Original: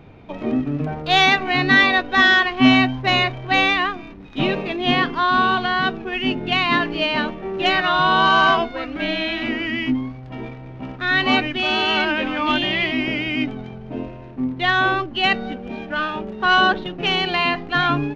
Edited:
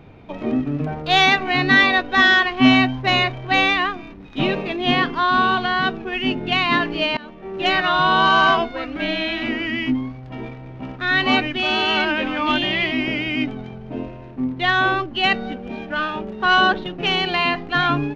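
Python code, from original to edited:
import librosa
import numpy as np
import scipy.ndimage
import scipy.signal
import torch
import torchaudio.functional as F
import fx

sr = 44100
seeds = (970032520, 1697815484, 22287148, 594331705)

y = fx.edit(x, sr, fx.fade_in_from(start_s=7.17, length_s=0.56, floor_db=-23.0), tone=tone)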